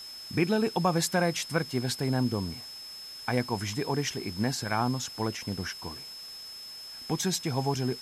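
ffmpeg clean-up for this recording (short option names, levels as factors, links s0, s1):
-af "adeclick=t=4,bandreject=f=5200:w=30,afwtdn=0.0032"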